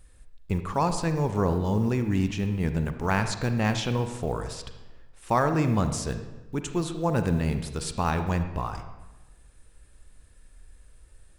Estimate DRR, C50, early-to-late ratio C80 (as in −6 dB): 7.5 dB, 8.5 dB, 10.5 dB